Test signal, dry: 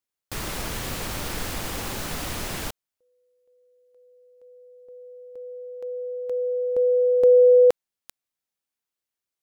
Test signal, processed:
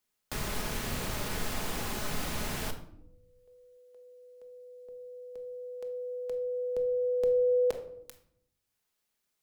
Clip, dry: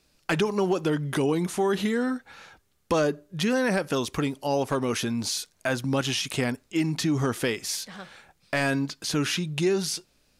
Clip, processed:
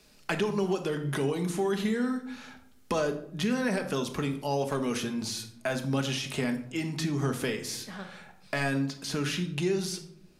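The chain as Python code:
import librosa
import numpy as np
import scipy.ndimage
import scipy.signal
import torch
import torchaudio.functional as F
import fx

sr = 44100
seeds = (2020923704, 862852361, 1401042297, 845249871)

y = fx.room_shoebox(x, sr, seeds[0], volume_m3=910.0, walls='furnished', distance_m=1.4)
y = fx.band_squash(y, sr, depth_pct=40)
y = y * librosa.db_to_amplitude(-6.0)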